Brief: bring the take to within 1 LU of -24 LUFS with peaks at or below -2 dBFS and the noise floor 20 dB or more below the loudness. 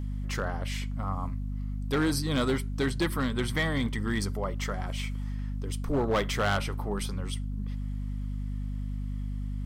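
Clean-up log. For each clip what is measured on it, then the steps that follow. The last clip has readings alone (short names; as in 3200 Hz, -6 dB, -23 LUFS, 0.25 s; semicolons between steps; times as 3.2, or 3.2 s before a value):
clipped 1.0%; flat tops at -21.0 dBFS; hum 50 Hz; harmonics up to 250 Hz; hum level -31 dBFS; loudness -31.5 LUFS; peak -21.0 dBFS; loudness target -24.0 LUFS
-> clip repair -21 dBFS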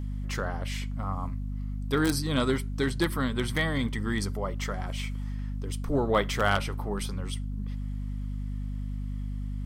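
clipped 0.0%; hum 50 Hz; harmonics up to 250 Hz; hum level -30 dBFS
-> de-hum 50 Hz, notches 5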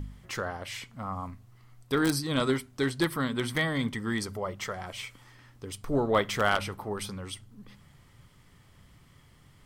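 hum none; loudness -30.5 LUFS; peak -10.5 dBFS; loudness target -24.0 LUFS
-> gain +6.5 dB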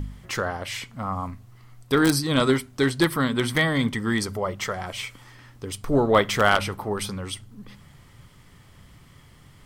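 loudness -24.0 LUFS; peak -4.0 dBFS; noise floor -52 dBFS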